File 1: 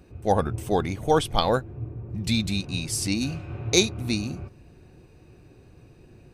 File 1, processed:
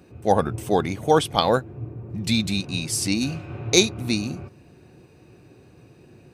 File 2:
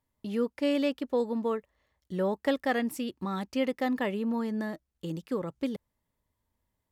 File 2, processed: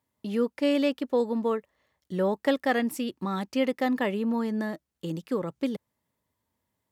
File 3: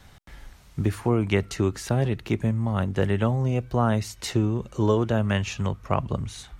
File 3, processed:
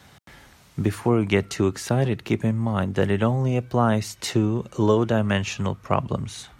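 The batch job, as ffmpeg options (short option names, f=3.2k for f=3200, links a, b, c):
-af "highpass=110,volume=3dB"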